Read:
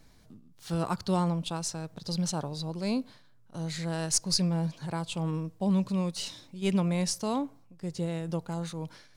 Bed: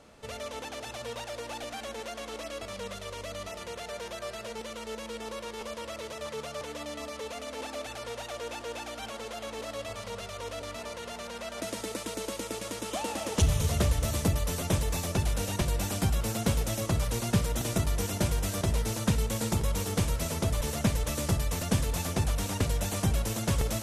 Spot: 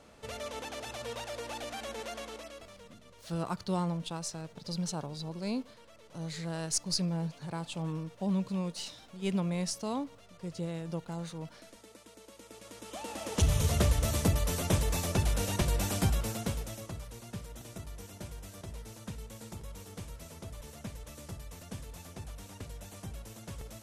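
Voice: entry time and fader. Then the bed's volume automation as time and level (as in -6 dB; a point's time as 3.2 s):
2.60 s, -4.5 dB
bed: 2.17 s -1.5 dB
2.99 s -18.5 dB
12.26 s -18.5 dB
13.57 s -0.5 dB
16.06 s -0.5 dB
17.09 s -16 dB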